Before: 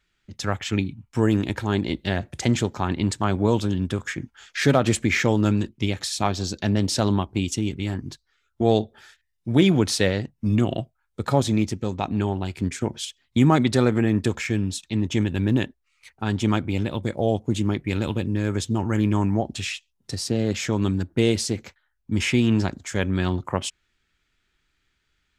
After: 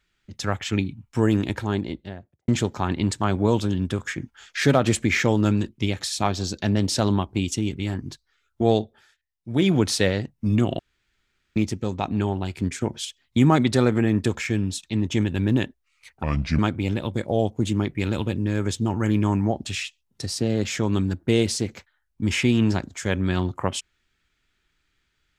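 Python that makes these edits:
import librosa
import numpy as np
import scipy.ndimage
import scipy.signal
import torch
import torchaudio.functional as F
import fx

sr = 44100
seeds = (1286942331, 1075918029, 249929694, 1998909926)

y = fx.studio_fade_out(x, sr, start_s=1.46, length_s=1.02)
y = fx.edit(y, sr, fx.fade_down_up(start_s=8.7, length_s=1.08, db=-10.0, fade_s=0.36),
    fx.room_tone_fill(start_s=10.79, length_s=0.77),
    fx.speed_span(start_s=16.23, length_s=0.25, speed=0.7), tone=tone)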